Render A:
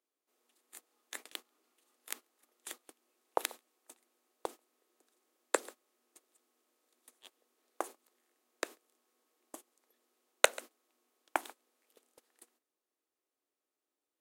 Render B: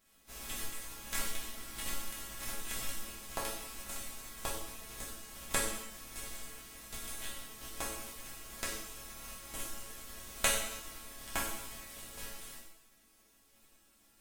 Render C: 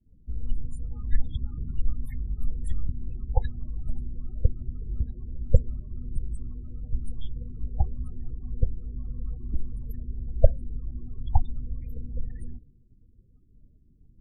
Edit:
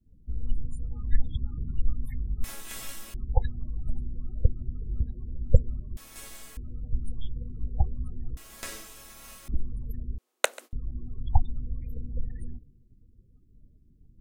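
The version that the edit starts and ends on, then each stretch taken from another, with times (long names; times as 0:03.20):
C
0:02.44–0:03.14: punch in from B
0:05.97–0:06.57: punch in from B
0:08.37–0:09.48: punch in from B
0:10.18–0:10.73: punch in from A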